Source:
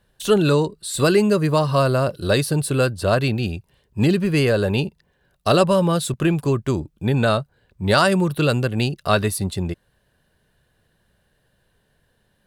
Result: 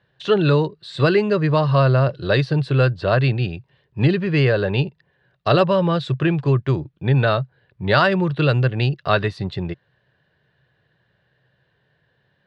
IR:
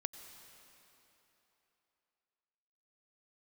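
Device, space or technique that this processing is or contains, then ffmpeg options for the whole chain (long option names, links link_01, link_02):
guitar cabinet: -af "highpass=100,equalizer=frequency=130:width_type=q:width=4:gain=8,equalizer=frequency=230:width_type=q:width=4:gain=-8,equalizer=frequency=1800:width_type=q:width=4:gain=5,lowpass=frequency=4200:width=0.5412,lowpass=frequency=4200:width=1.3066"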